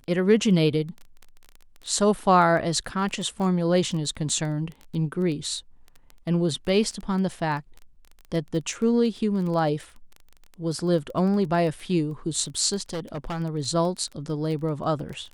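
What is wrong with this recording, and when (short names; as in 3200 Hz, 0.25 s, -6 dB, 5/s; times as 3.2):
crackle 14/s -31 dBFS
12.89–13.41 clipped -27 dBFS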